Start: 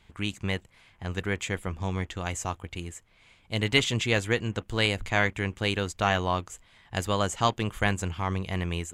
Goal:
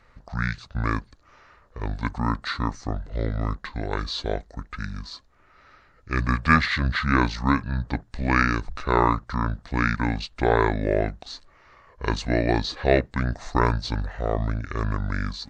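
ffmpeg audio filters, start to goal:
-af "asetrate=25442,aresample=44100,volume=4dB"

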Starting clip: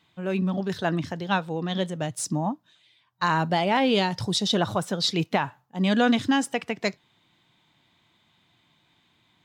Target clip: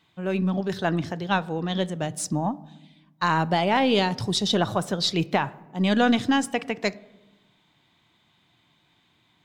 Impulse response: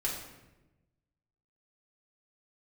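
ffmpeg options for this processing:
-filter_complex "[0:a]aeval=exprs='0.422*(cos(1*acos(clip(val(0)/0.422,-1,1)))-cos(1*PI/2))+0.00841*(cos(4*acos(clip(val(0)/0.422,-1,1)))-cos(4*PI/2))':c=same,asplit=2[a][b];[b]lowpass=f=1.4k:p=1[c];[1:a]atrim=start_sample=2205[d];[c][d]afir=irnorm=-1:irlink=0,volume=-17.5dB[e];[a][e]amix=inputs=2:normalize=0"

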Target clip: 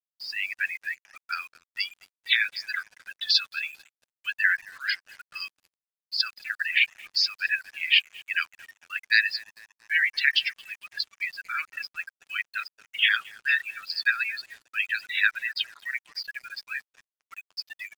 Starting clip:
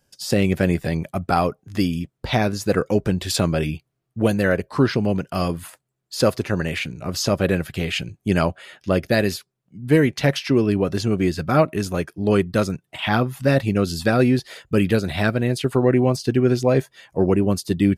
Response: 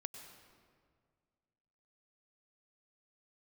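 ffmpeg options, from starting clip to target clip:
-filter_complex "[0:a]afftdn=nr=25:nf=-27,asuperpass=centerf=2900:order=12:qfactor=0.83,dynaudnorm=f=120:g=9:m=8dB,asplit=2[a][b];[b]adelay=225,lowpass=f=3.9k:p=1,volume=-23dB,asplit=2[c][d];[d]adelay=225,lowpass=f=3.9k:p=1,volume=0.53,asplit=2[e][f];[f]adelay=225,lowpass=f=3.9k:p=1,volume=0.53,asplit=2[g][h];[h]adelay=225,lowpass=f=3.9k:p=1,volume=0.53[i];[c][e][g][i]amix=inputs=4:normalize=0[j];[a][j]amix=inputs=2:normalize=0,acrusher=bits=7:mix=0:aa=0.5"

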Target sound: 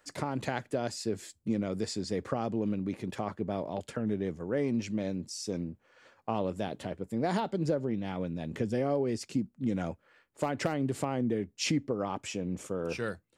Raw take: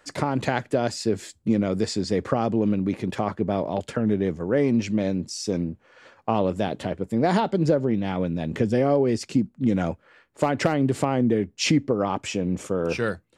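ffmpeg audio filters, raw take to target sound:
-af "highshelf=f=8.9k:g=8.5,volume=-9dB"

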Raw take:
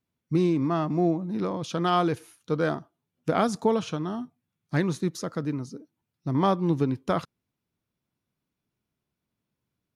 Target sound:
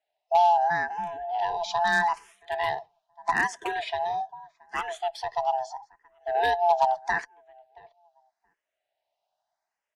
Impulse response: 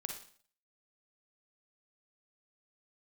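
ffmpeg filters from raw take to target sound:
-filter_complex "[0:a]afftfilt=real='real(if(lt(b,1008),b+24*(1-2*mod(floor(b/24),2)),b),0)':imag='imag(if(lt(b,1008),b+24*(1-2*mod(floor(b/24),2)),b),0)':win_size=2048:overlap=0.75,acontrast=36,equalizer=f=270:w=0.92:g=-10,acrossover=split=140|3000[a][b][c];[a]acompressor=threshold=-33dB:ratio=3[d];[d][b][c]amix=inputs=3:normalize=0,acrossover=split=280 7400:gain=0.178 1 0.0794[e][f][g];[e][f][g]amix=inputs=3:normalize=0,asplit=2[h][i];[i]adelay=675,lowpass=f=1.3k:p=1,volume=-22dB,asplit=2[j][k];[k]adelay=675,lowpass=f=1.3k:p=1,volume=0.15[l];[j][l]amix=inputs=2:normalize=0[m];[h][m]amix=inputs=2:normalize=0,aeval=exprs='0.251*(abs(mod(val(0)/0.251+3,4)-2)-1)':c=same,asplit=2[n][o];[o]afreqshift=0.79[p];[n][p]amix=inputs=2:normalize=1"

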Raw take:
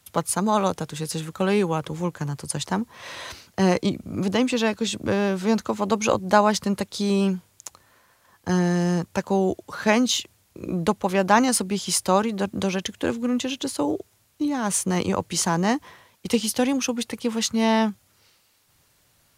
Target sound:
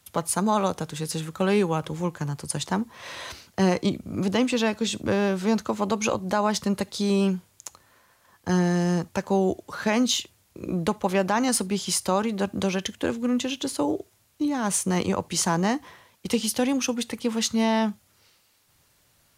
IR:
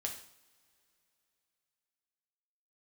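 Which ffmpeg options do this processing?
-filter_complex "[0:a]alimiter=limit=-11dB:level=0:latency=1:release=104,asplit=2[a][b];[1:a]atrim=start_sample=2205,atrim=end_sample=3969[c];[b][c]afir=irnorm=-1:irlink=0,volume=-15dB[d];[a][d]amix=inputs=2:normalize=0,volume=-2dB"

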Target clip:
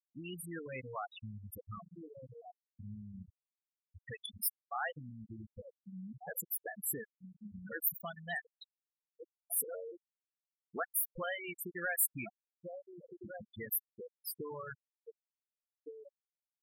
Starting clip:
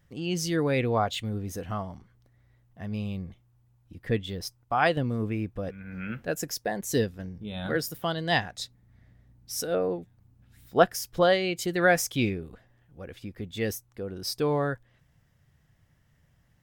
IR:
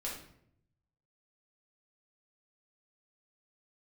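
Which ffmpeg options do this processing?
-filter_complex "[0:a]asettb=1/sr,asplit=3[a][b][c];[a]atrim=end=4.084[d];[b]atrim=start=4.08:end=4.76,asetpts=PTS-STARTPTS,afade=t=in:d=0.004:c=qsin,afade=t=out:st=0.676:d=0.004:c=qsin,tiltshelf=f=1.3k:g=-8.5[e];[c]atrim=start=4.756[f];[d][e]acrossfade=d=0.004:c1=hsin:c2=qsin[g];[g][f]acrossfade=d=0.004:c1=qsin:c2=hsin,agate=range=-14dB:threshold=-54dB:ratio=16:detection=peak,highshelf=f=5.6k:g=-8.5,asplit=2[h][i];[i]adelay=1458,volume=-12dB,highshelf=f=4k:g=-32.8[j];[h][j]amix=inputs=2:normalize=0,acrossover=split=1100[k][l];[k]acompressor=threshold=-38dB:ratio=5[m];[l]asoftclip=type=tanh:threshold=-27.5dB[n];[m][n]amix=inputs=2:normalize=0,acrusher=bits=10:mix=0:aa=0.000001,aexciter=amount=7.4:drive=7.8:freq=8.5k,afftfilt=real='re*gte(hypot(re,im),0.0708)':imag='im*gte(hypot(re,im),0.0708)':win_size=1024:overlap=0.75,volume=-4.5dB"

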